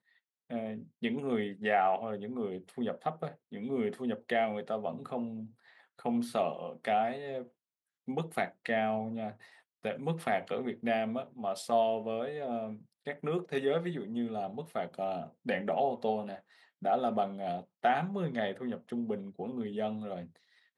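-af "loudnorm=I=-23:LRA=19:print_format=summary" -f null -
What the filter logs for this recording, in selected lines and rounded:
Input Integrated:    -34.7 LUFS
Input True Peak:     -15.8 dBTP
Input LRA:             2.4 LU
Input Threshold:     -44.9 LUFS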